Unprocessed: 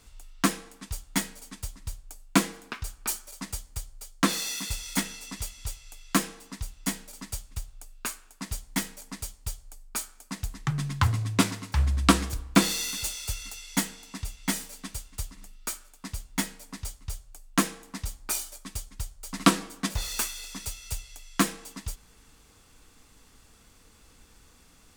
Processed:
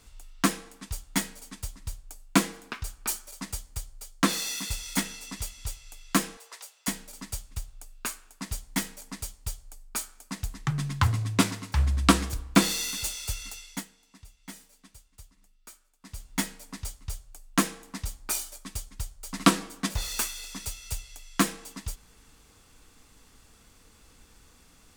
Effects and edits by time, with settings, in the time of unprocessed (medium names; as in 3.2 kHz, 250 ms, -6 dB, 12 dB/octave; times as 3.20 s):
6.37–6.88 s: steep high-pass 430 Hz 48 dB/octave
13.53–16.32 s: dip -15.5 dB, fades 0.32 s